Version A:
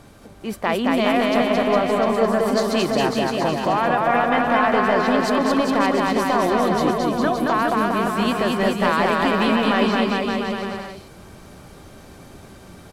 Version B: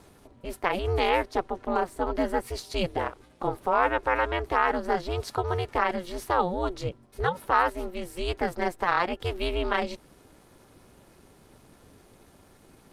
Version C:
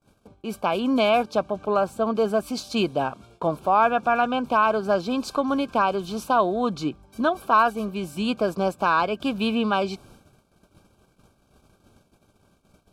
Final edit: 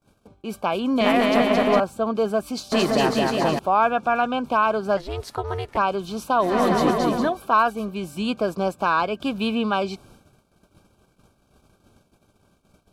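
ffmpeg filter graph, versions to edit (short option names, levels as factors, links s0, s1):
-filter_complex "[0:a]asplit=3[s0][s1][s2];[2:a]asplit=5[s3][s4][s5][s6][s7];[s3]atrim=end=1.012[s8];[s0]atrim=start=1.008:end=1.802[s9];[s4]atrim=start=1.798:end=2.722[s10];[s1]atrim=start=2.718:end=3.592[s11];[s5]atrim=start=3.588:end=4.972[s12];[1:a]atrim=start=4.968:end=5.772[s13];[s6]atrim=start=5.768:end=6.62[s14];[s2]atrim=start=6.38:end=7.37[s15];[s7]atrim=start=7.13[s16];[s8][s9]acrossfade=d=0.004:c1=hsin:c2=hsin[s17];[s17][s10]acrossfade=d=0.004:c1=hsin:c2=hsin[s18];[s18][s11]acrossfade=d=0.004:c1=hsin:c2=hsin[s19];[s19][s12]acrossfade=d=0.004:c1=hsin:c2=hsin[s20];[s20][s13]acrossfade=d=0.004:c1=hsin:c2=hsin[s21];[s21][s14]acrossfade=d=0.004:c1=hsin:c2=hsin[s22];[s22][s15]acrossfade=d=0.24:c1=tri:c2=tri[s23];[s23][s16]acrossfade=d=0.24:c1=tri:c2=tri"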